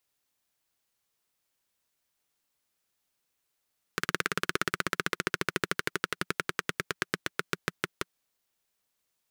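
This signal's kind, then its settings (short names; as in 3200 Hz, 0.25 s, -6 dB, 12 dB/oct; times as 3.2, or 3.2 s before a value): single-cylinder engine model, changing speed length 4.18 s, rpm 2200, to 600, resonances 180/370/1400 Hz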